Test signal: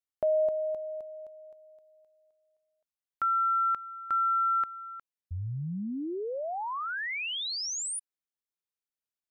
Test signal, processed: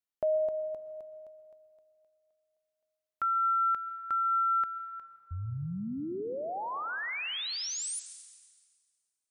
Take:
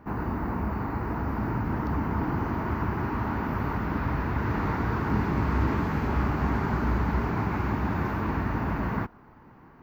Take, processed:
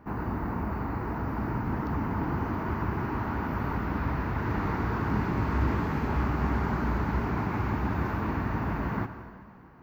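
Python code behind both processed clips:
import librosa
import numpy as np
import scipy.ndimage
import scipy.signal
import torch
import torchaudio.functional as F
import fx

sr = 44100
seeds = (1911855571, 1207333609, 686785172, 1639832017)

y = fx.rev_plate(x, sr, seeds[0], rt60_s=1.8, hf_ratio=0.9, predelay_ms=105, drr_db=10.5)
y = y * 10.0 ** (-2.0 / 20.0)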